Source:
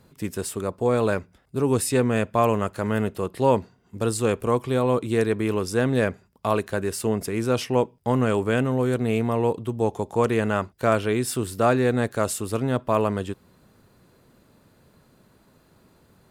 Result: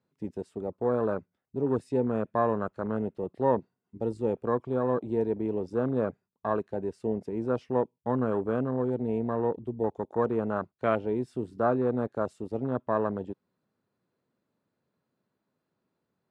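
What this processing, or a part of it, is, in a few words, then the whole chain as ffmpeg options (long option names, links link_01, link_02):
over-cleaned archive recording: -af "highpass=140,lowpass=6300,highshelf=frequency=3600:gain=-6,afwtdn=0.0447,volume=-5dB"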